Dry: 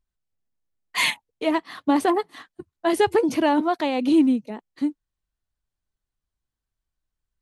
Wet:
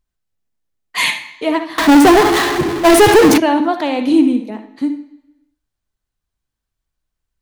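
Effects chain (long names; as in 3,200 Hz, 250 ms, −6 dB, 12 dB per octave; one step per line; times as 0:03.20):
on a send at −7 dB: convolution reverb RT60 1.0 s, pre-delay 52 ms
0:01.78–0:03.38: on the sum: power curve on the samples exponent 0.35
level +5 dB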